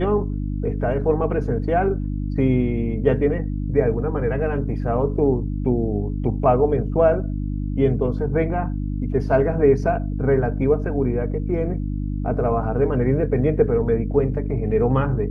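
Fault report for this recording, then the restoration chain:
mains hum 50 Hz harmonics 6 −25 dBFS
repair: hum removal 50 Hz, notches 6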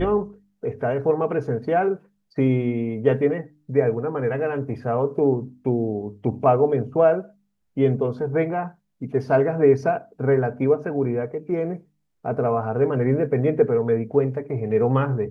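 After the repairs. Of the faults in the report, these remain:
none of them is left

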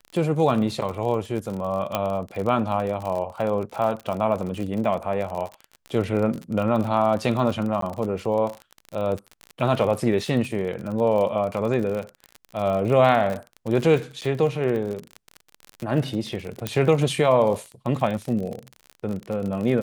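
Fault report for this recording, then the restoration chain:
surface crackle 47 per second −28 dBFS
0:01.95: click −9 dBFS
0:07.81–0:07.82: drop-out 13 ms
0:14.21–0:14.22: drop-out 8.4 ms
0:16.67: click −9 dBFS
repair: click removal
repair the gap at 0:07.81, 13 ms
repair the gap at 0:14.21, 8.4 ms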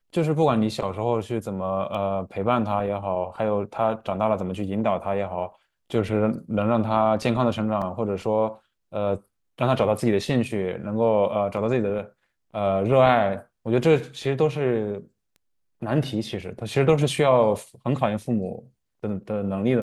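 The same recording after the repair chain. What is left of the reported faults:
0:01.95: click

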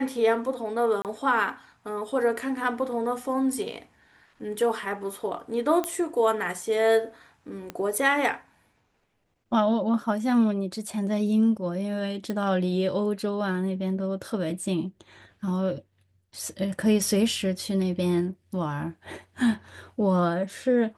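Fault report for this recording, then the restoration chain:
0:01.02–0:01.05: drop-out 28 ms
0:05.84: click −14 dBFS
0:07.70: click −19 dBFS
0:12.30: click −18 dBFS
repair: click removal
repair the gap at 0:01.02, 28 ms

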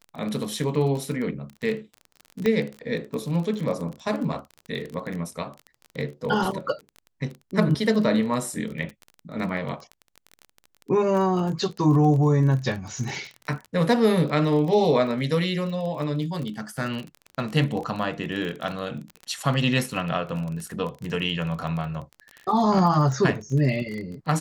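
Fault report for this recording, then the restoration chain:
surface crackle 24 per second −30 dBFS
0:02.46: click −12 dBFS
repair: click removal

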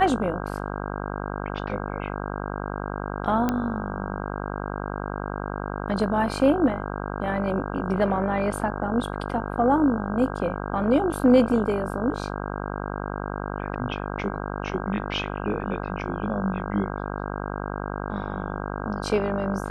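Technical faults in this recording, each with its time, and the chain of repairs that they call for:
mains buzz 50 Hz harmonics 32 −31 dBFS
0:03.49: click −11 dBFS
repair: click removal
hum removal 50 Hz, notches 32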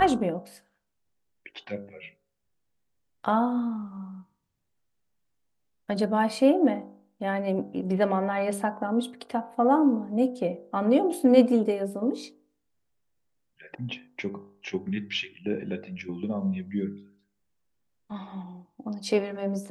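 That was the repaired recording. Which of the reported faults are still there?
none of them is left

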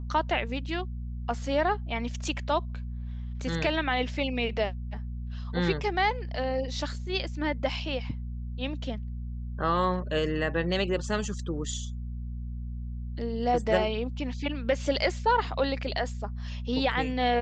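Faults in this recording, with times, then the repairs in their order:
mains hum 60 Hz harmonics 4 −35 dBFS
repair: hum removal 60 Hz, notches 4

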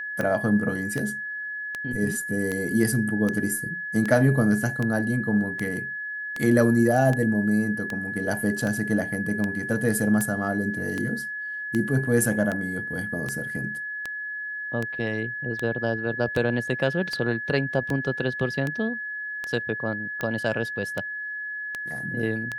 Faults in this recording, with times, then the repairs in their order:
scratch tick 78 rpm −15 dBFS
whistle 1,700 Hz −30 dBFS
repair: click removal
notch filter 1,700 Hz, Q 30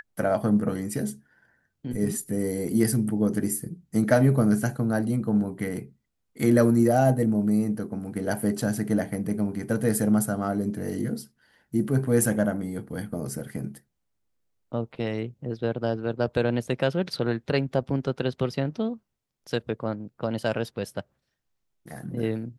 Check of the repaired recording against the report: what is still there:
none of them is left

